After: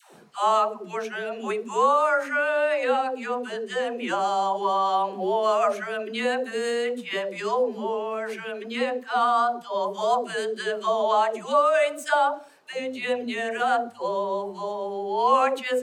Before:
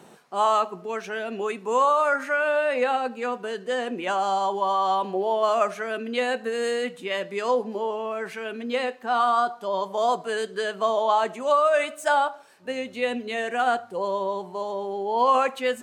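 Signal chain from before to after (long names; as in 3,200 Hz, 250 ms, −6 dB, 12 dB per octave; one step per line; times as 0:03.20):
all-pass dispersion lows, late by 147 ms, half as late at 520 Hz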